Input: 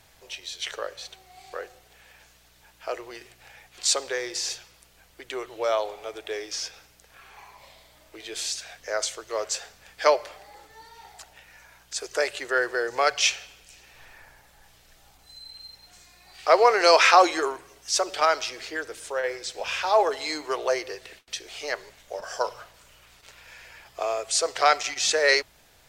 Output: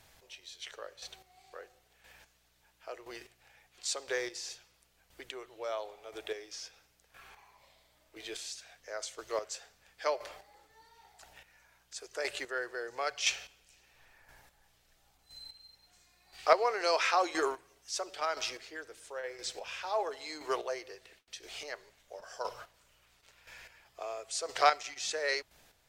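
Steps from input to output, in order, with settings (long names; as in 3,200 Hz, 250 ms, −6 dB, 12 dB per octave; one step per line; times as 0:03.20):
square-wave tremolo 0.98 Hz, depth 60%, duty 20%
level −4.5 dB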